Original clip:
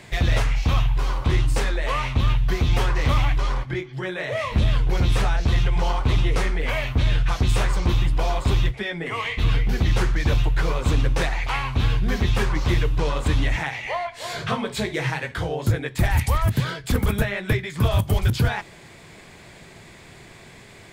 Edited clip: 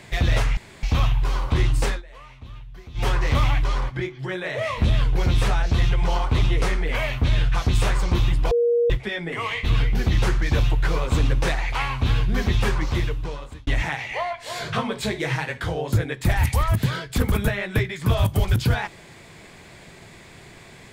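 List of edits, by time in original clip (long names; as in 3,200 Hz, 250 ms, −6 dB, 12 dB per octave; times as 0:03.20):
0:00.57: splice in room tone 0.26 s
0:01.63–0:02.81: duck −20 dB, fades 0.13 s
0:08.25–0:08.64: beep over 474 Hz −16 dBFS
0:12.45–0:13.41: fade out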